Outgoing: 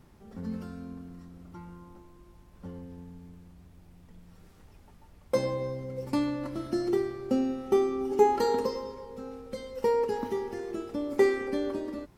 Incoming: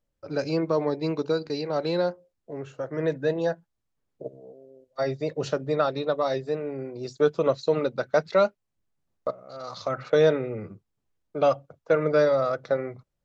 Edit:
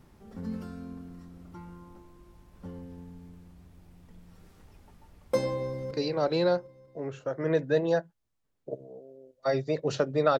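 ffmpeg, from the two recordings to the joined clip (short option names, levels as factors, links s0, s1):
-filter_complex "[0:a]apad=whole_dur=10.39,atrim=end=10.39,atrim=end=5.912[s0];[1:a]atrim=start=1.438:end=5.92[s1];[s0][s1]acrossfade=d=0.004:c1=hsin:c2=hsin,asplit=2[s2][s3];[s3]afade=t=in:st=5.54:d=0.01,afade=t=out:st=5.91:d=0.01,aecho=0:1:190|380|570|760|950|1140|1330|1520|1710|1900:0.334965|0.234476|0.164133|0.114893|0.0804252|0.0562976|0.0394083|0.0275858|0.0193101|0.0135171[s4];[s2][s4]amix=inputs=2:normalize=0"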